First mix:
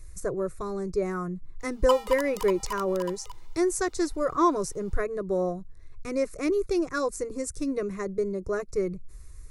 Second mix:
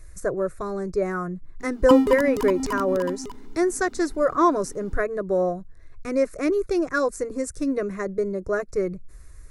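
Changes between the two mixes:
background: remove Butterworth high-pass 480 Hz 96 dB per octave
master: add graphic EQ with 15 bands 250 Hz +5 dB, 630 Hz +7 dB, 1,600 Hz +8 dB

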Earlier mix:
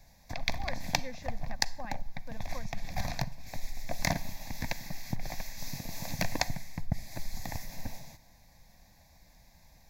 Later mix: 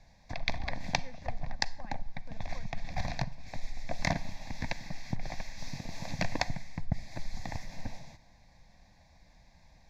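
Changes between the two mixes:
speech −8.0 dB
master: add low-pass filter 4,800 Hz 12 dB per octave

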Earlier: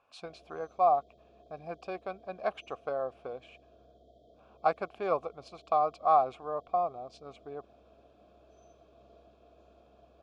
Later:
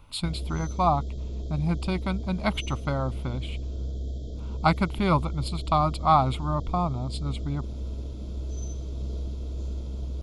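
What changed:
speech: add phaser with its sweep stopped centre 1,700 Hz, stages 6
master: remove formant filter a

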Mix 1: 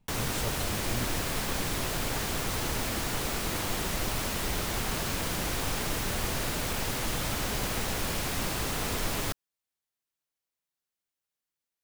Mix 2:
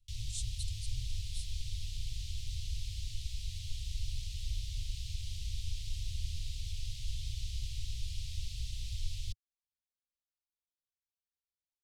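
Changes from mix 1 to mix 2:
background: add head-to-tape spacing loss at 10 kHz 21 dB
master: add inverse Chebyshev band-stop filter 220–1,500 Hz, stop band 50 dB

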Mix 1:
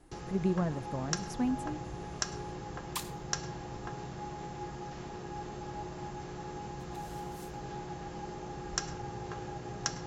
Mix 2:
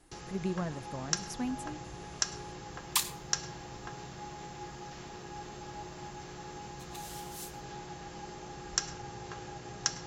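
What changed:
second sound +6.5 dB
master: add tilt shelving filter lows −4.5 dB, about 1,500 Hz

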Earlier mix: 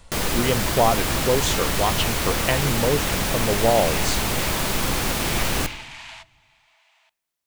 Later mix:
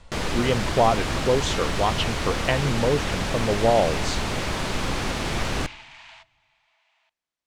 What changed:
first sound: send −11.0 dB
second sound −5.5 dB
master: add high-frequency loss of the air 76 metres

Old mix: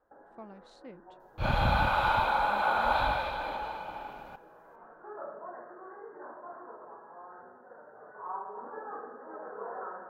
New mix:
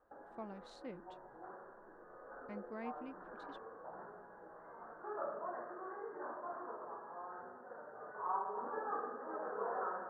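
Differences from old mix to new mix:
first sound: remove notch filter 1,200 Hz, Q 17
second sound: muted

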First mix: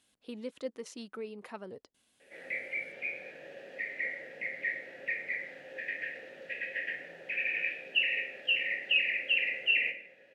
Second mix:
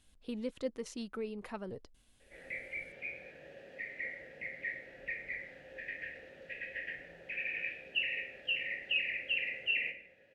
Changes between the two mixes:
background −5.5 dB
master: remove Bessel high-pass filter 250 Hz, order 2

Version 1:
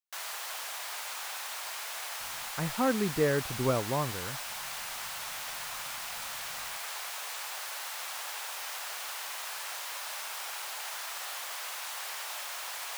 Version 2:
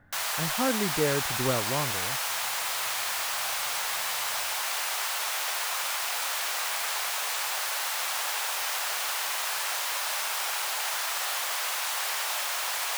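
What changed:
speech: entry −2.20 s
background +8.5 dB

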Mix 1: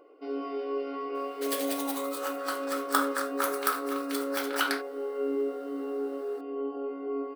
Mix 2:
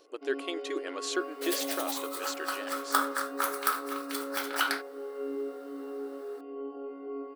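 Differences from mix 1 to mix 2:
speech: unmuted
first sound −5.5 dB

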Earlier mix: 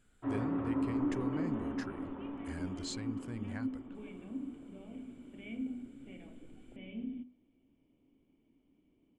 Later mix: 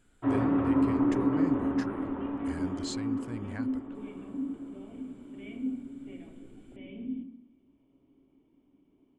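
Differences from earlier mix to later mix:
speech +3.0 dB
first sound +8.5 dB
second sound: send on

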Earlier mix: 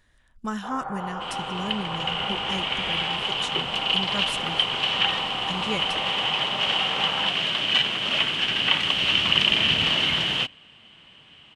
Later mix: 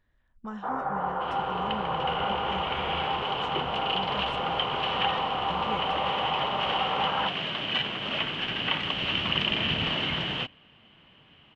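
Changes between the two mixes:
speech −6.5 dB
first sound +6.0 dB
master: add head-to-tape spacing loss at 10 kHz 26 dB

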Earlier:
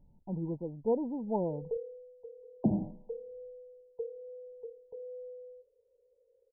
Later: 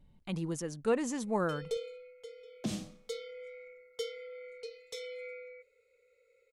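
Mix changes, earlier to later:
second sound −8.0 dB
master: remove linear-phase brick-wall low-pass 1,000 Hz

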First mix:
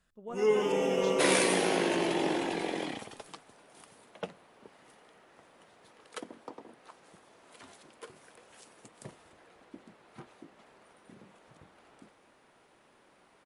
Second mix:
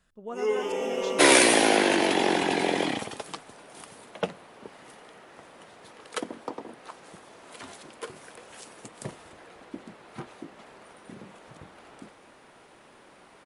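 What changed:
speech +4.5 dB
first sound: add high-pass filter 310 Hz 12 dB per octave
second sound +9.5 dB

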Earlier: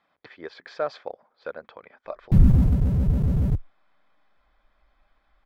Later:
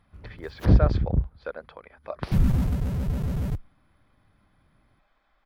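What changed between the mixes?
first sound: unmuted
second sound: add tilt shelving filter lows −6 dB, about 690 Hz

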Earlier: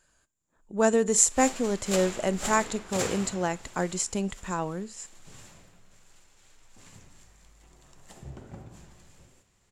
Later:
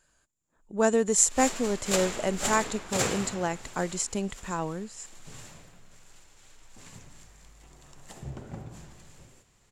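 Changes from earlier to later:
background +5.5 dB
reverb: off

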